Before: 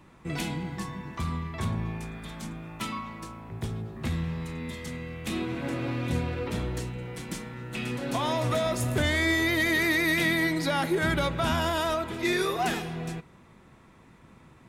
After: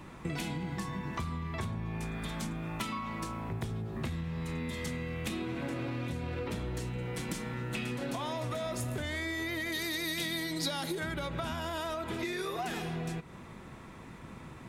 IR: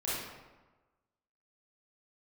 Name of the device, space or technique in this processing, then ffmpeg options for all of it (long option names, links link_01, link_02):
serial compression, leveller first: -filter_complex "[0:a]acompressor=threshold=-28dB:ratio=6,acompressor=threshold=-40dB:ratio=6,asettb=1/sr,asplit=3[link_01][link_02][link_03];[link_01]atrim=end=9.724[link_04];[link_02]atrim=start=9.72:end=11,asetpts=PTS-STARTPTS,afade=type=in:duration=0.004:curve=qsin,afade=type=out:start_time=1.276:duration=0.004:curve=qsin,highshelf=frequency=2900:width_type=q:width=1.5:gain=7[link_05];[link_03]atrim=start=10.996[link_06];[link_04][link_05]acrossfade=duration=0.004:curve1=hsin:curve2=qsin[link_07];[link_07][link_06]acrossfade=duration=0.004:curve1=qsin:curve2=hsin,volume=6.5dB"